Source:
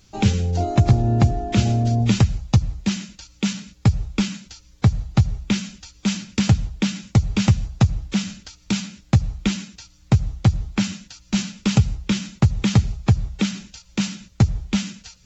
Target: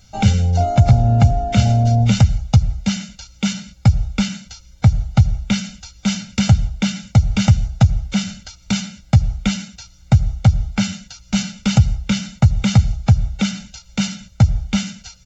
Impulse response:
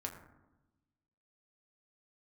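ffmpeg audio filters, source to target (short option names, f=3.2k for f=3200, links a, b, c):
-af "asoftclip=type=tanh:threshold=-6.5dB,aecho=1:1:1.4:0.85,volume=1.5dB"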